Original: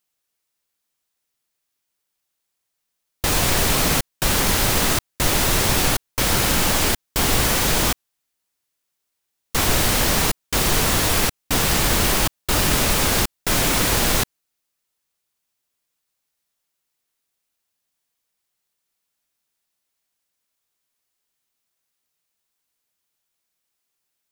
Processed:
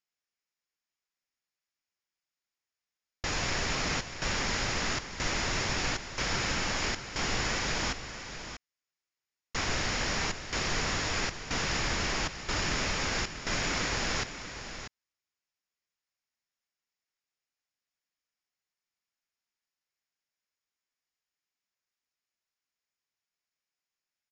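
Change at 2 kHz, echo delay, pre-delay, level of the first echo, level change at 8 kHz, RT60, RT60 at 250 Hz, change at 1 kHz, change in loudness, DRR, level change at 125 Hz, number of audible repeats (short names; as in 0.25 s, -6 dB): -7.5 dB, 0.64 s, none, -10.5 dB, -14.5 dB, none, none, -10.5 dB, -12.5 dB, none, -12.5 dB, 1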